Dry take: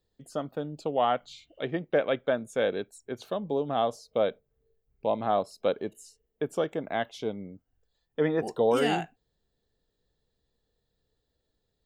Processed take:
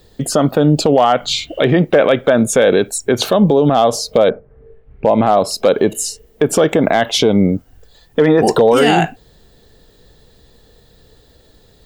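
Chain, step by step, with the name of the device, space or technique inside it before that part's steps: 4.28–5.35 LPF 1600 Hz -> 3500 Hz 24 dB/oct; loud club master (compressor 2:1, threshold -31 dBFS, peak gain reduction 7 dB; hard clip -21.5 dBFS, distortion -29 dB; maximiser +31.5 dB); gain -2 dB

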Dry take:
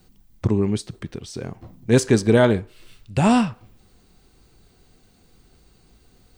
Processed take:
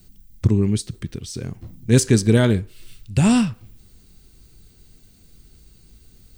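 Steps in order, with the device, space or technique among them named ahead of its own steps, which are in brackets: smiley-face EQ (low shelf 160 Hz +7.5 dB; bell 790 Hz -8.5 dB 1.5 oct; high shelf 5800 Hz +9 dB)

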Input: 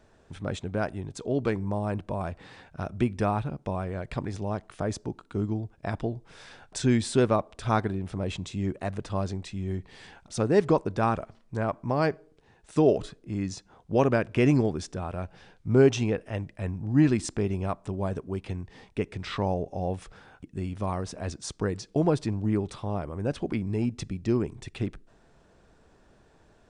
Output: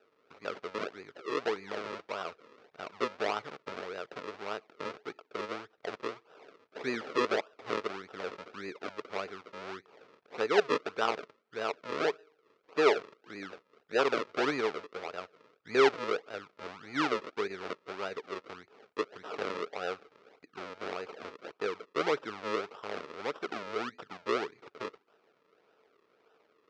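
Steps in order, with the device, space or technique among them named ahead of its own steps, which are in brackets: circuit-bent sampling toy (decimation with a swept rate 40×, swing 100% 1.7 Hz; speaker cabinet 430–5200 Hz, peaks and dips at 440 Hz +9 dB, 1300 Hz +8 dB, 2300 Hz +4 dB); gain -6 dB

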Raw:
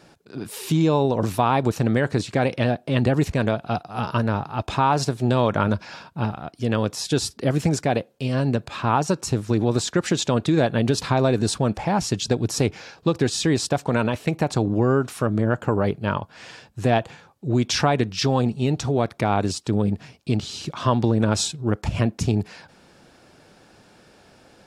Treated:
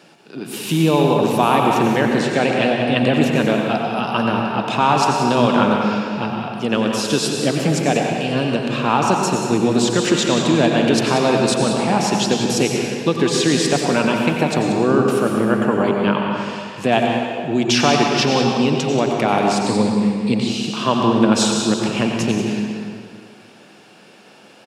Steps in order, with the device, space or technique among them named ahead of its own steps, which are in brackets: PA in a hall (HPF 160 Hz 24 dB/oct; bell 2800 Hz +7.5 dB 0.42 oct; echo 0.185 s -10.5 dB; reverb RT60 2.1 s, pre-delay 83 ms, DRR 1 dB); 19.66–20.47 ripple EQ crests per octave 0.97, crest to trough 8 dB; gain +3 dB

